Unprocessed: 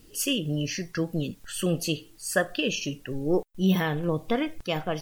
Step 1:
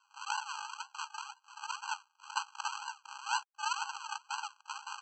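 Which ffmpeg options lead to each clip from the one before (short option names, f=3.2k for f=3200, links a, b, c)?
-af "lowshelf=f=340:g=-5.5,aresample=16000,acrusher=samples=36:mix=1:aa=0.000001:lfo=1:lforange=21.6:lforate=2,aresample=44100,afftfilt=real='re*eq(mod(floor(b*sr/1024/810),2),1)':imag='im*eq(mod(floor(b*sr/1024/810),2),1)':win_size=1024:overlap=0.75,volume=3dB"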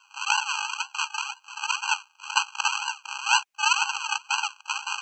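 -af "equalizer=f=630:t=o:w=0.67:g=3,equalizer=f=2.5k:t=o:w=0.67:g=12,equalizer=f=6.3k:t=o:w=0.67:g=6,areverse,acompressor=mode=upward:threshold=-44dB:ratio=2.5,areverse,volume=8dB"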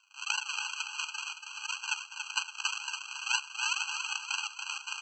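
-af "highpass=1.5k,tremolo=f=26:d=0.571,aecho=1:1:283|566|849|1132|1415:0.473|0.218|0.1|0.0461|0.0212,volume=-4.5dB"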